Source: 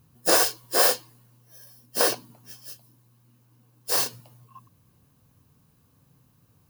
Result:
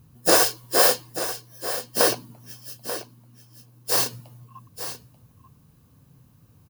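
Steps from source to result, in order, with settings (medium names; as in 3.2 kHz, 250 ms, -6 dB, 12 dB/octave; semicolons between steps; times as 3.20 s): bass shelf 280 Hz +6 dB; delay 887 ms -11.5 dB; trim +2 dB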